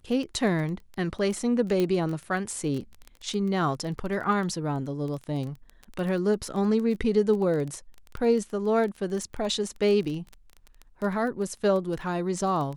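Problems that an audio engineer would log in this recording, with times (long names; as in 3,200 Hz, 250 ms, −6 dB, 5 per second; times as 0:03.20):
surface crackle 16 per second −31 dBFS
0:01.80: click −14 dBFS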